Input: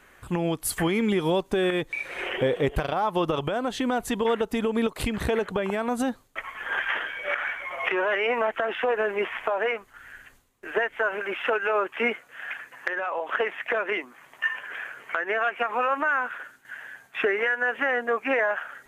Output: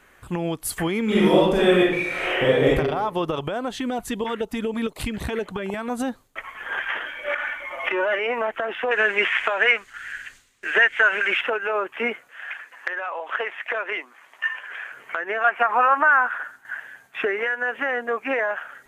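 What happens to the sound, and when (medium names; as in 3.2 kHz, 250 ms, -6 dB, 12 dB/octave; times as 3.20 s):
1.04–2.70 s: reverb throw, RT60 0.84 s, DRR -7 dB
3.74–5.90 s: LFO notch saw up 4 Hz 340–1800 Hz
7.05–8.19 s: comb 3.4 ms
8.91–11.41 s: high-order bell 3.5 kHz +12.5 dB 2.9 oct
12.29–14.92 s: frequency weighting A
15.44–16.80 s: high-order bell 1.1 kHz +8 dB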